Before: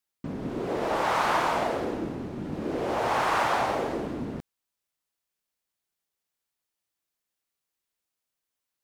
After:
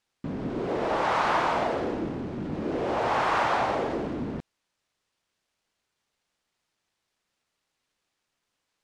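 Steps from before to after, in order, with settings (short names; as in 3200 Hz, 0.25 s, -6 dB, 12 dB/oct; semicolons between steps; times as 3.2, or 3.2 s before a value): G.711 law mismatch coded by mu; air absorption 76 m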